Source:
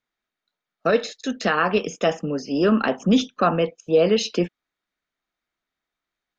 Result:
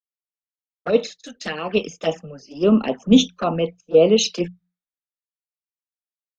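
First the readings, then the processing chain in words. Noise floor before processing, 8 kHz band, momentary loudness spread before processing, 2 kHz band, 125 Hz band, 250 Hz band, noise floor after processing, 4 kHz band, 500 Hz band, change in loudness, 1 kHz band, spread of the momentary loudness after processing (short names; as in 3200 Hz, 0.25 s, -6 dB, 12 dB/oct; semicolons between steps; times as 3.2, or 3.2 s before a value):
under -85 dBFS, n/a, 8 LU, -5.5 dB, 0.0 dB, +2.5 dB, under -85 dBFS, +4.0 dB, +1.5 dB, +2.0 dB, -5.0 dB, 17 LU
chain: notches 60/120/180 Hz; envelope flanger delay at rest 10.2 ms, full sweep at -16 dBFS; three-band expander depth 100%; gain +1.5 dB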